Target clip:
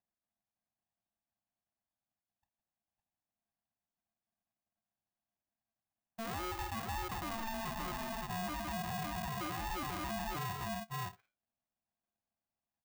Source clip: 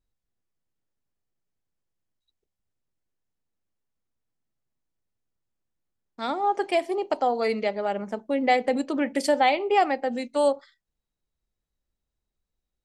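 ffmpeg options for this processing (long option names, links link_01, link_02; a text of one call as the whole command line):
ffmpeg -i in.wav -filter_complex "[0:a]asplit=2[link_01][link_02];[link_02]aecho=0:1:50|155|164|550|562:0.168|0.119|0.224|0.133|0.376[link_03];[link_01][link_03]amix=inputs=2:normalize=0,acompressor=threshold=-22dB:ratio=6,aresample=8000,asoftclip=type=tanh:threshold=-29dB,aresample=44100,highpass=160,equalizer=frequency=240:width_type=q:width=4:gain=10,equalizer=frequency=360:width_type=q:width=4:gain=7,equalizer=frequency=1500:width_type=q:width=4:gain=-6,lowpass=frequency=2200:width=0.5412,lowpass=frequency=2200:width=1.3066,alimiter=level_in=1.5dB:limit=-24dB:level=0:latency=1:release=33,volume=-1.5dB,aeval=exprs='val(0)*sgn(sin(2*PI*450*n/s))':channel_layout=same,volume=-8dB" out.wav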